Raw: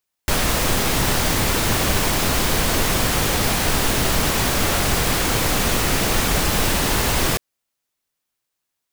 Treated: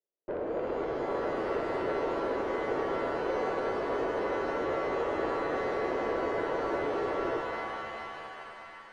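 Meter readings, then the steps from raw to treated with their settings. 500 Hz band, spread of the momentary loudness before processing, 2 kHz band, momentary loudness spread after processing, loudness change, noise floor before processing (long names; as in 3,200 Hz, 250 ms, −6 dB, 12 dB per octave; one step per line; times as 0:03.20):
−3.5 dB, 0 LU, −14.5 dB, 8 LU, −13.0 dB, −80 dBFS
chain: flat-topped band-pass 450 Hz, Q 1.8
tube saturation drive 29 dB, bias 0.35
reverb with rising layers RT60 3.1 s, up +7 semitones, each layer −2 dB, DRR 4 dB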